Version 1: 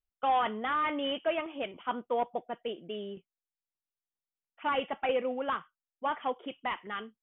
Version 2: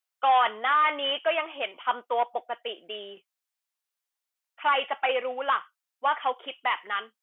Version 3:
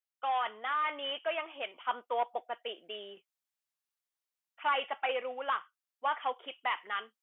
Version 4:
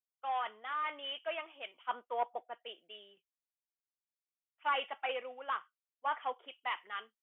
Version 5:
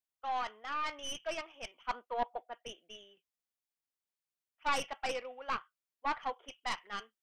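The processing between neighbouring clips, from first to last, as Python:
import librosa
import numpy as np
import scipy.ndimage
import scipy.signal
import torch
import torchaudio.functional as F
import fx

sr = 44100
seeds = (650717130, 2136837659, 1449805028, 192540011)

y1 = scipy.signal.sosfilt(scipy.signal.butter(2, 730.0, 'highpass', fs=sr, output='sos'), x)
y1 = F.gain(torch.from_numpy(y1), 8.5).numpy()
y2 = fx.rider(y1, sr, range_db=3, speed_s=2.0)
y2 = F.gain(torch.from_numpy(y2), -8.0).numpy()
y3 = fx.band_widen(y2, sr, depth_pct=70)
y3 = F.gain(torch.from_numpy(y3), -4.5).numpy()
y4 = fx.tracing_dist(y3, sr, depth_ms=0.13)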